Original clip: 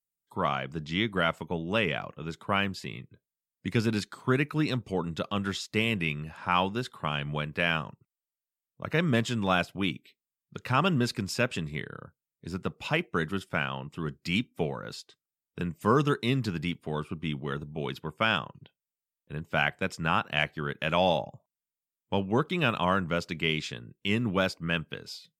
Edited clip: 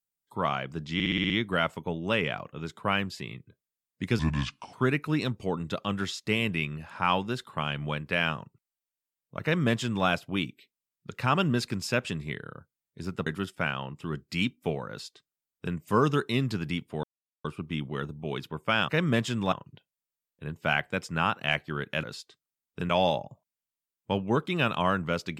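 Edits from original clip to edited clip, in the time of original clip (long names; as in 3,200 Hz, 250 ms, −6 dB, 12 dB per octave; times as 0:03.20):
0:00.94: stutter 0.06 s, 7 plays
0:03.83–0:04.20: play speed 68%
0:08.89–0:09.53: duplicate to 0:18.41
0:12.73–0:13.20: remove
0:14.83–0:15.69: duplicate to 0:20.92
0:16.97: splice in silence 0.41 s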